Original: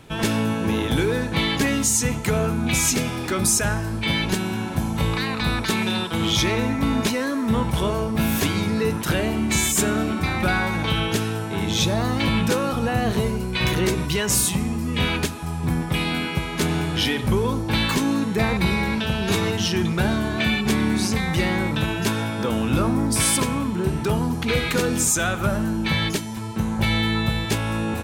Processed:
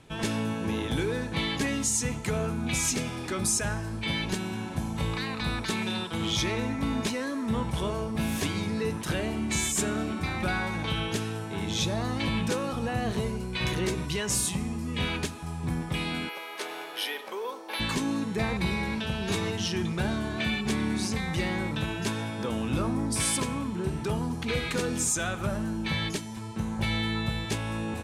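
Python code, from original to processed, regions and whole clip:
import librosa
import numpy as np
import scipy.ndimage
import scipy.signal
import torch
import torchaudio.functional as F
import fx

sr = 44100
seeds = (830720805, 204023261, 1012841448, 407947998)

y = fx.chain(x, sr, fx.highpass(hz=440.0, slope=24),
    fx.high_shelf(hz=4900.0, db=-3.5),
    fx.resample_bad(factor=3, down='filtered', up='hold'), at=(16.29, 17.8))
y = scipy.signal.sosfilt(scipy.signal.cheby1(2, 1.0, 9500.0, 'lowpass', fs=sr, output='sos'), y)
y = fx.notch(y, sr, hz=1400.0, q=22.0)
y = F.gain(torch.from_numpy(y), -6.5).numpy()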